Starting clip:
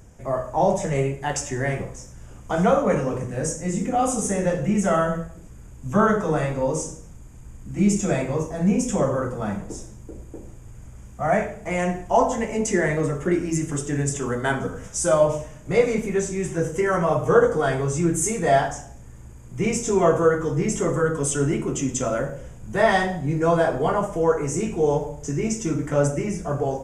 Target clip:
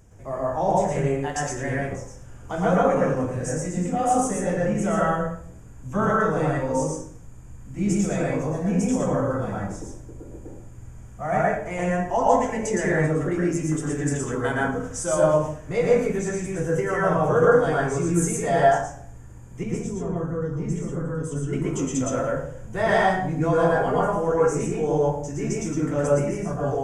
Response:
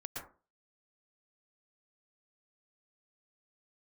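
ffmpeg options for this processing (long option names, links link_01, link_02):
-filter_complex "[0:a]asettb=1/sr,asplit=3[link_01][link_02][link_03];[link_01]atrim=end=19.634[link_04];[link_02]atrim=start=19.63:end=21.53,asetpts=PTS-STARTPTS,afade=type=in:duration=0.004:curve=qsin,afade=type=out:start_time=1.896:duration=0.004:curve=qsin,acrossover=split=270[link_05][link_06];[link_06]acompressor=threshold=-40dB:ratio=2.5[link_07];[link_05][link_07]amix=inputs=2:normalize=0[link_08];[link_03]atrim=start=21.526[link_09];[link_04][link_08]acrossfade=duration=0.004:curve1=hsin:curve2=qsin[link_10];[link_10][link_09]acrossfade=duration=0.004:curve1=qsin:curve2=hsin[link_11];[1:a]atrim=start_sample=2205[link_12];[link_11][link_12]afir=irnorm=-1:irlink=0"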